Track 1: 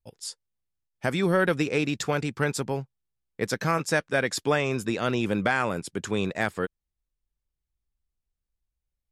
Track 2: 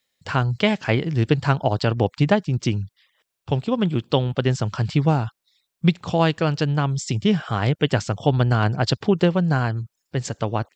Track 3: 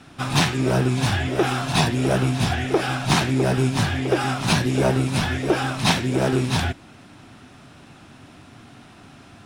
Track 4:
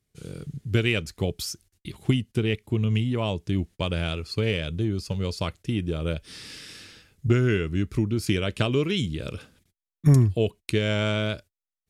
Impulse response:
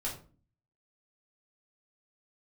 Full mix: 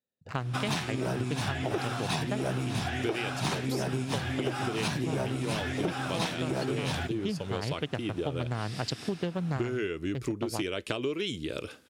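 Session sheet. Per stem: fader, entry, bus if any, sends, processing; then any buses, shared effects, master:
−14.0 dB, 0.60 s, no send, wave folding −26 dBFS
−6.5 dB, 0.00 s, no send, adaptive Wiener filter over 41 samples; high-shelf EQ 6,100 Hz +12 dB
−0.5 dB, 0.35 s, no send, no processing
+0.5 dB, 2.30 s, no send, low shelf with overshoot 240 Hz −7 dB, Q 1.5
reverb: not used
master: high-pass filter 52 Hz; low-shelf EQ 79 Hz −6.5 dB; downward compressor 6 to 1, threshold −28 dBFS, peak gain reduction 14 dB

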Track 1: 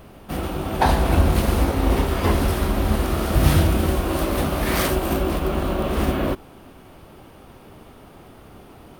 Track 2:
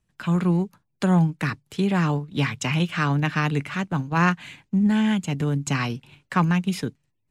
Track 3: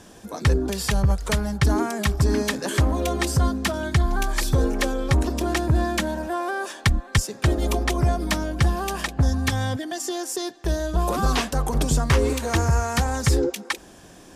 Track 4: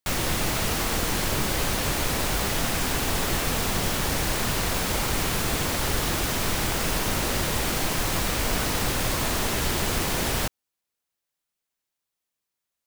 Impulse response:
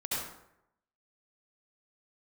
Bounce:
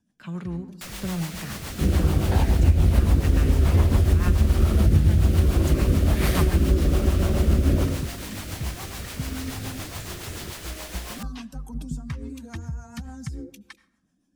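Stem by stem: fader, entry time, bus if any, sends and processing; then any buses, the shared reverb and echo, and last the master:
0.0 dB, 1.50 s, send −10 dB, downward compressor 1.5 to 1, threshold −26 dBFS, peak gain reduction 6 dB; parametric band 81 Hz +13.5 dB 2.2 octaves; rotating-speaker cabinet horn 1.2 Hz
−10.0 dB, 0.00 s, send −16 dB, no processing
−12.5 dB, 0.00 s, send −22.5 dB, spectral dynamics exaggerated over time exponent 1.5; downward compressor, threshold −22 dBFS, peak gain reduction 7 dB; low shelf with overshoot 310 Hz +6.5 dB, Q 3; automatic ducking −8 dB, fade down 0.20 s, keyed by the second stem
−7.0 dB, 0.75 s, no send, low-shelf EQ 410 Hz −11.5 dB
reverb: on, RT60 0.80 s, pre-delay 63 ms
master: rotating-speaker cabinet horn 7 Hz; downward compressor 3 to 1, threshold −15 dBFS, peak gain reduction 9.5 dB

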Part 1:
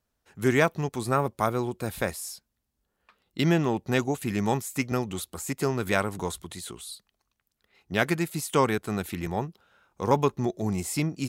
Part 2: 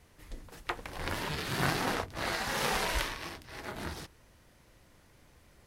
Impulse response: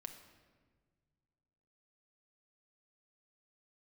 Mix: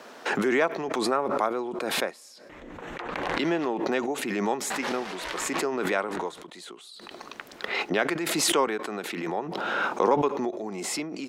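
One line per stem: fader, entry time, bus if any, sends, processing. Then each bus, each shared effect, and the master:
−0.5 dB, 0.00 s, send −20.5 dB, high-pass filter 290 Hz 12 dB per octave; high-shelf EQ 3,300 Hz −10 dB
−9.0 dB, 2.30 s, muted 0:03.68–0:04.70, no send, adaptive Wiener filter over 9 samples; noise gate −56 dBFS, range −21 dB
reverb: on, RT60 1.6 s, pre-delay 5 ms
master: three-way crossover with the lows and the highs turned down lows −20 dB, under 190 Hz, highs −13 dB, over 7,400 Hz; background raised ahead of every attack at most 23 dB per second

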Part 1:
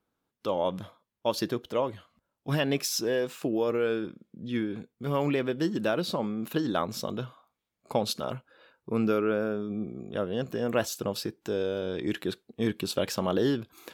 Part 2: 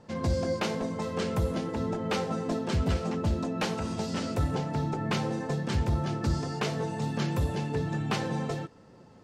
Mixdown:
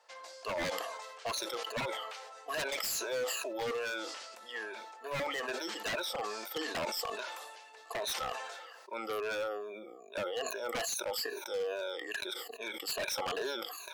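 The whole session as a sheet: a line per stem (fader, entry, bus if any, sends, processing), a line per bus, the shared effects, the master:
−6.0 dB, 0.00 s, no send, rippled gain that drifts along the octave scale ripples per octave 1.5, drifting −2.4 Hz, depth 24 dB
−1.5 dB, 0.00 s, no send, high-pass filter 1,300 Hz 6 dB per octave; brickwall limiter −31 dBFS, peak gain reduction 10 dB; automatic ducking −9 dB, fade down 0.40 s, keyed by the first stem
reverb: not used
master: high-pass filter 550 Hz 24 dB per octave; wave folding −29.5 dBFS; level that may fall only so fast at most 34 dB per second

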